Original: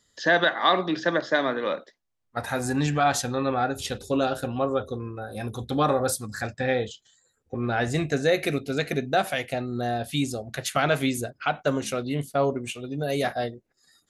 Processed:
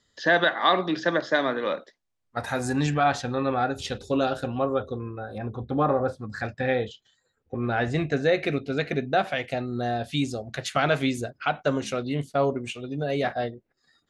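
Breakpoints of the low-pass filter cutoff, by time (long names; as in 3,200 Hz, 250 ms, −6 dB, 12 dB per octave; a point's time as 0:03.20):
5,400 Hz
from 0:00.84 8,800 Hz
from 0:02.94 3,700 Hz
from 0:03.51 6,000 Hz
from 0:04.50 3,600 Hz
from 0:05.38 1,500 Hz
from 0:06.30 3,800 Hz
from 0:09.44 6,200 Hz
from 0:13.03 3,600 Hz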